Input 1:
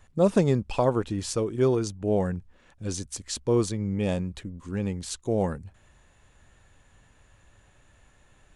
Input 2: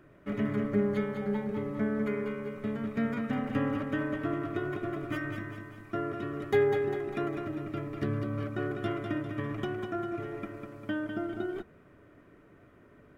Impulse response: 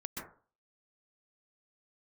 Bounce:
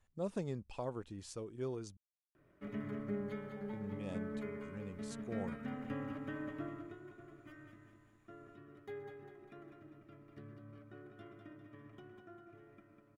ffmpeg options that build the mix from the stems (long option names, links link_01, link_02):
-filter_complex "[0:a]volume=-18dB,asplit=3[link_01][link_02][link_03];[link_01]atrim=end=1.97,asetpts=PTS-STARTPTS,afade=type=out:start_time=1.966:duration=0.004:curve=hsin[link_04];[link_02]atrim=start=1.97:end=3.73,asetpts=PTS-STARTPTS,volume=0[link_05];[link_03]atrim=start=3.73,asetpts=PTS-STARTPTS,afade=type=in:duration=0.004:curve=hsin[link_06];[link_04][link_05][link_06]concat=n=3:v=0:a=1[link_07];[1:a]adelay=2350,volume=-14dB,afade=type=out:start_time=6.61:duration=0.39:silence=0.316228,asplit=2[link_08][link_09];[link_09]volume=-7dB[link_10];[2:a]atrim=start_sample=2205[link_11];[link_10][link_11]afir=irnorm=-1:irlink=0[link_12];[link_07][link_08][link_12]amix=inputs=3:normalize=0"